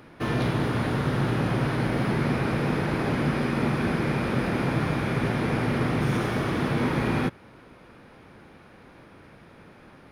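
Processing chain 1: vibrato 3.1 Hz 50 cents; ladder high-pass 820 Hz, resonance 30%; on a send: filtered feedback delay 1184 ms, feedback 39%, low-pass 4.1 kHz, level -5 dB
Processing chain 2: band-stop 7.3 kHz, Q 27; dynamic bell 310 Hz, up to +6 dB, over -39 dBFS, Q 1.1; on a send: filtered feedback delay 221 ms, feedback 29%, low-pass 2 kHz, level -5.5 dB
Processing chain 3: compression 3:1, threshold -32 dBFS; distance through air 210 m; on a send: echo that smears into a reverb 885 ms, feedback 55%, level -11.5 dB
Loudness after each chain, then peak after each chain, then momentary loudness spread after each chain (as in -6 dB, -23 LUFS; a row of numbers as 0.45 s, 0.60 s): -37.5 LUFS, -22.5 LUFS, -34.0 LUFS; -25.0 dBFS, -8.5 dBFS, -20.0 dBFS; 14 LU, 2 LU, 15 LU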